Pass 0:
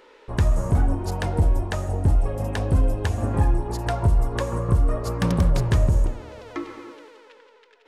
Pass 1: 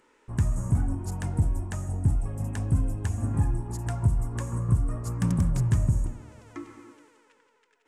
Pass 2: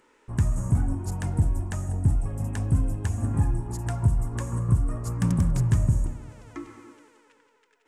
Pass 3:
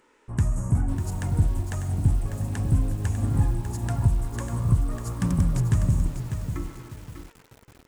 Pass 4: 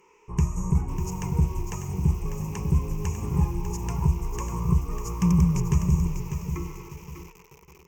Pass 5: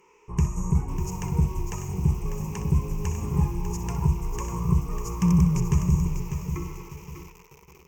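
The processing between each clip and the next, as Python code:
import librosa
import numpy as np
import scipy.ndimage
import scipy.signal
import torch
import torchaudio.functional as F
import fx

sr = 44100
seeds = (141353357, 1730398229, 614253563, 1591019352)

y1 = fx.graphic_eq(x, sr, hz=(125, 250, 500, 4000, 8000), db=(8, 5, -9, -9, 11))
y1 = F.gain(torch.from_numpy(y1), -8.5).numpy()
y2 = fx.echo_feedback(y1, sr, ms=195, feedback_pct=48, wet_db=-22)
y2 = F.gain(torch.from_numpy(y2), 1.5).numpy()
y3 = fx.echo_crushed(y2, sr, ms=597, feedback_pct=35, bits=7, wet_db=-8.0)
y4 = fx.ripple_eq(y3, sr, per_octave=0.77, db=18)
y4 = F.gain(torch.from_numpy(y4), -2.0).numpy()
y5 = fx.room_flutter(y4, sr, wall_m=10.7, rt60_s=0.31)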